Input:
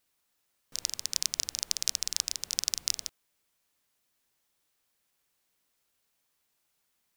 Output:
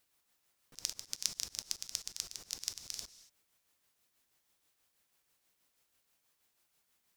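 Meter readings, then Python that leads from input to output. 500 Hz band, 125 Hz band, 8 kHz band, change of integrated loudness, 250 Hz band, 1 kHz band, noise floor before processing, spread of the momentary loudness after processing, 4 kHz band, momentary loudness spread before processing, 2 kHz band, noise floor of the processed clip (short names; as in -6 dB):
-6.0 dB, -5.0 dB, -9.0 dB, -9.0 dB, -5.5 dB, -7.5 dB, -77 dBFS, 7 LU, -9.0 dB, 5 LU, -9.0 dB, -79 dBFS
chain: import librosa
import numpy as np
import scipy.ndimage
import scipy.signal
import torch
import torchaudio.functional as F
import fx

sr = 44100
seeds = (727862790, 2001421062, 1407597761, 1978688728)

y = x * (1.0 - 0.46 / 2.0 + 0.46 / 2.0 * np.cos(2.0 * np.pi * 6.2 * (np.arange(len(x)) / sr)))
y = fx.rev_gated(y, sr, seeds[0], gate_ms=240, shape='falling', drr_db=12.0)
y = fx.auto_swell(y, sr, attack_ms=166.0)
y = F.gain(torch.from_numpy(y), 2.0).numpy()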